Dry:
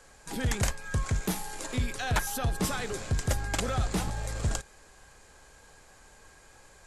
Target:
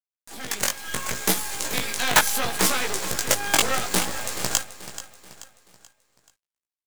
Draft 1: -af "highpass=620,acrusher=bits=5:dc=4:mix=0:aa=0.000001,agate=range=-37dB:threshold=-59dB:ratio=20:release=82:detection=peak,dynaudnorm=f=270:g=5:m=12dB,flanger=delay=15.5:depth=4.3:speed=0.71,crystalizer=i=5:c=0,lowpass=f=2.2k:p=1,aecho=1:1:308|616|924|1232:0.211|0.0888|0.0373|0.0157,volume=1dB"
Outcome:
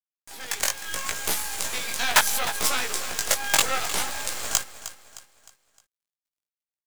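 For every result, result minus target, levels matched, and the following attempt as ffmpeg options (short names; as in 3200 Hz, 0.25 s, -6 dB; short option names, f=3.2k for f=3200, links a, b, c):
250 Hz band -9.0 dB; echo 0.124 s early
-af "highpass=250,acrusher=bits=5:dc=4:mix=0:aa=0.000001,agate=range=-37dB:threshold=-59dB:ratio=20:release=82:detection=peak,dynaudnorm=f=270:g=5:m=12dB,flanger=delay=15.5:depth=4.3:speed=0.71,crystalizer=i=5:c=0,lowpass=f=2.2k:p=1,aecho=1:1:308|616|924|1232:0.211|0.0888|0.0373|0.0157,volume=1dB"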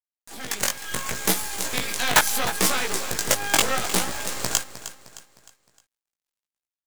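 echo 0.124 s early
-af "highpass=250,acrusher=bits=5:dc=4:mix=0:aa=0.000001,agate=range=-37dB:threshold=-59dB:ratio=20:release=82:detection=peak,dynaudnorm=f=270:g=5:m=12dB,flanger=delay=15.5:depth=4.3:speed=0.71,crystalizer=i=5:c=0,lowpass=f=2.2k:p=1,aecho=1:1:432|864|1296|1728:0.211|0.0888|0.0373|0.0157,volume=1dB"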